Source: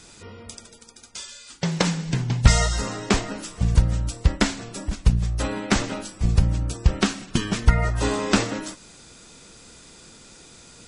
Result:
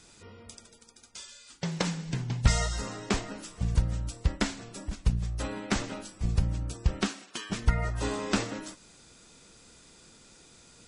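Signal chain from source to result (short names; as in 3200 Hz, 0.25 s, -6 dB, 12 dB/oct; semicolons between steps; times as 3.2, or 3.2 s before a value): 7.07–7.49 HPF 230 Hz -> 790 Hz 12 dB/oct; gain -8 dB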